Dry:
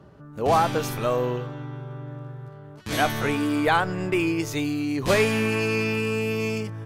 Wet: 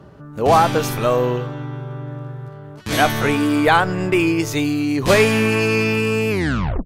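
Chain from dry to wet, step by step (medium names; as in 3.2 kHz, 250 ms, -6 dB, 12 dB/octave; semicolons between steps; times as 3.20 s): tape stop on the ending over 0.56 s; trim +6.5 dB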